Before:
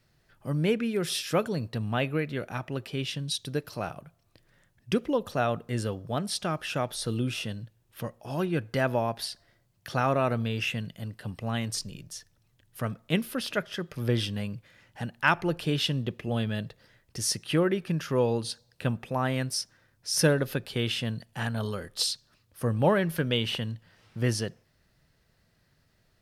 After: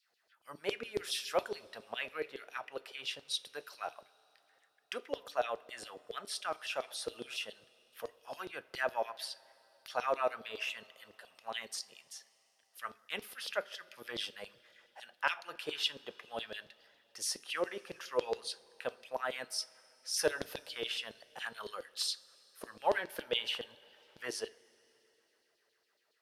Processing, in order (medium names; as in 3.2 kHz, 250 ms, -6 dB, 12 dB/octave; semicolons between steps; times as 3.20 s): LFO high-pass saw down 7.2 Hz 410–4600 Hz; two-slope reverb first 0.26 s, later 3.7 s, from -19 dB, DRR 13 dB; trim -8.5 dB